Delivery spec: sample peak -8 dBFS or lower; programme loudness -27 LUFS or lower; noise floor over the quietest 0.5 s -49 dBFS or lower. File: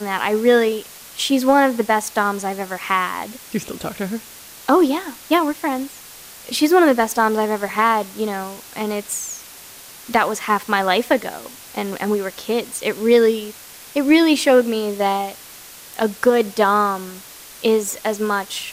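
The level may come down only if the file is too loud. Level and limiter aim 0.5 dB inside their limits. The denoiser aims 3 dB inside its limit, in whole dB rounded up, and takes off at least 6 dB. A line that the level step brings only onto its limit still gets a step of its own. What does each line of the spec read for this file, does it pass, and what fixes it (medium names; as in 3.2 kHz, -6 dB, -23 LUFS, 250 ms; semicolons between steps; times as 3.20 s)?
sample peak -4.0 dBFS: fail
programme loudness -19.0 LUFS: fail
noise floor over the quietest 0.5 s -40 dBFS: fail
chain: noise reduction 6 dB, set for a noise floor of -40 dBFS; trim -8.5 dB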